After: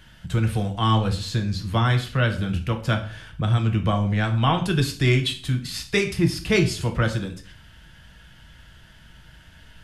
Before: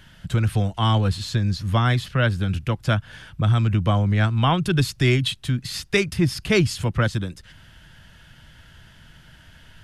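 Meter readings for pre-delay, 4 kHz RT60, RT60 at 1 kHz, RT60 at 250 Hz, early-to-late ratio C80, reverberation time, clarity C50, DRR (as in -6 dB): 3 ms, 0.40 s, 0.40 s, 0.55 s, 15.5 dB, 0.45 s, 11.5 dB, 4.0 dB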